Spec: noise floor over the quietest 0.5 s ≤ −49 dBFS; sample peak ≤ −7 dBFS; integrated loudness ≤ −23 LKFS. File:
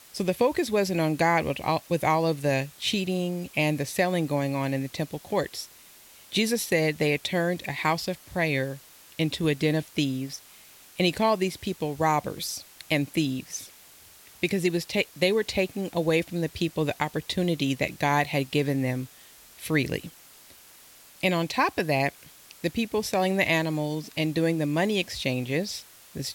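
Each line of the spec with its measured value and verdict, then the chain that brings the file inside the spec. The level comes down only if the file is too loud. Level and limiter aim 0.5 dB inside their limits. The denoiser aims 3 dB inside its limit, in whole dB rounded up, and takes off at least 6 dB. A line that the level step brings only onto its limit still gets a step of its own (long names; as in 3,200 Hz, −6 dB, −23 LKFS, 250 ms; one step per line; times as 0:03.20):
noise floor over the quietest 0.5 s −52 dBFS: in spec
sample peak −9.0 dBFS: in spec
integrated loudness −27.0 LKFS: in spec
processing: no processing needed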